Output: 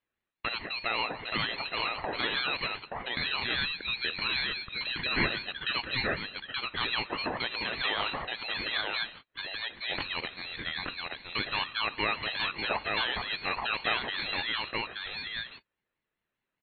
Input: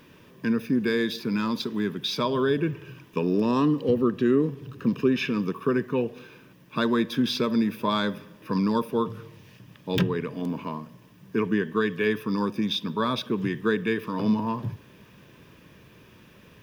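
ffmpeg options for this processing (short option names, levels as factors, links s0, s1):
-filter_complex "[0:a]highpass=f=1200:p=1,agate=range=0.0112:threshold=0.00501:ratio=16:detection=peak,asplit=2[s0][s1];[s1]acompressor=threshold=0.00562:ratio=6,volume=0.944[s2];[s0][s2]amix=inputs=2:normalize=0,alimiter=limit=0.0794:level=0:latency=1:release=49,crystalizer=i=7.5:c=0,lowpass=f=3100:t=q:w=0.5098,lowpass=f=3100:t=q:w=0.6013,lowpass=f=3100:t=q:w=0.9,lowpass=f=3100:t=q:w=2.563,afreqshift=-3600,aecho=1:1:876:0.708,aeval=exprs='val(0)*sin(2*PI*790*n/s+790*0.25/5*sin(2*PI*5*n/s))':c=same"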